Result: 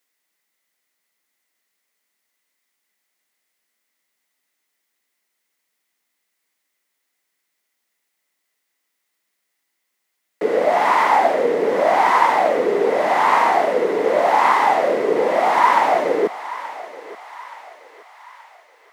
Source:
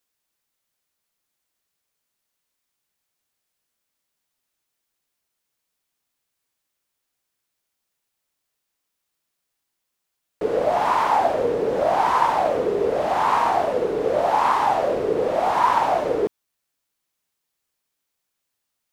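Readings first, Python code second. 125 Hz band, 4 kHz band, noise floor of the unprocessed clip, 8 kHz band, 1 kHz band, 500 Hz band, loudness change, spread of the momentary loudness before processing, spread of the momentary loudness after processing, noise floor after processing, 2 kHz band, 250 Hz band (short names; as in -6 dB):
n/a, +4.0 dB, -80 dBFS, +4.0 dB, +4.0 dB, +3.5 dB, +4.0 dB, 4 LU, 17 LU, -75 dBFS, +8.5 dB, +3.0 dB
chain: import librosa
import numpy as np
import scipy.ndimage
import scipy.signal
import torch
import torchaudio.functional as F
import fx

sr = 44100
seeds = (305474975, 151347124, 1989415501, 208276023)

y = scipy.signal.sosfilt(scipy.signal.butter(4, 190.0, 'highpass', fs=sr, output='sos'), x)
y = fx.peak_eq(y, sr, hz=2000.0, db=11.5, octaves=0.25)
y = fx.echo_thinned(y, sr, ms=876, feedback_pct=57, hz=800.0, wet_db=-13.0)
y = y * librosa.db_to_amplitude(3.5)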